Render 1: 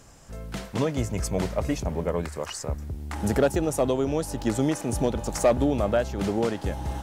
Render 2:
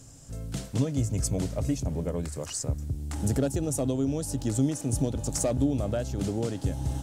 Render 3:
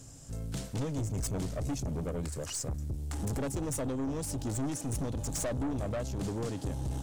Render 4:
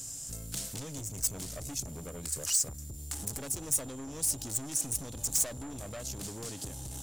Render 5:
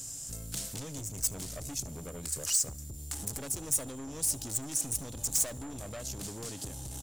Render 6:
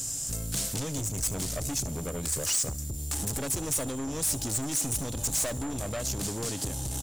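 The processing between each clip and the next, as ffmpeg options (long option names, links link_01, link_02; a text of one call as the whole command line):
ffmpeg -i in.wav -filter_complex "[0:a]equalizer=frequency=270:width=4.6:gain=14.5,asplit=2[link_01][link_02];[link_02]acompressor=threshold=-24dB:ratio=6,volume=1.5dB[link_03];[link_01][link_03]amix=inputs=2:normalize=0,equalizer=frequency=125:width_type=o:width=1:gain=10,equalizer=frequency=250:width_type=o:width=1:gain=-8,equalizer=frequency=1000:width_type=o:width=1:gain=-7,equalizer=frequency=2000:width_type=o:width=1:gain=-6,equalizer=frequency=8000:width_type=o:width=1:gain=7,volume=-8.5dB" out.wav
ffmpeg -i in.wav -af "aeval=exprs='(tanh(31.6*val(0)+0.25)-tanh(0.25))/31.6':channel_layout=same" out.wav
ffmpeg -i in.wav -af "acompressor=threshold=-37dB:ratio=6,crystalizer=i=6.5:c=0,aeval=exprs='val(0)+0.00355*sin(2*PI*7200*n/s)':channel_layout=same,volume=-3dB" out.wav
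ffmpeg -i in.wav -af "aecho=1:1:74|148|222:0.0631|0.0271|0.0117" out.wav
ffmpeg -i in.wav -af "volume=32.5dB,asoftclip=hard,volume=-32.5dB,volume=8dB" out.wav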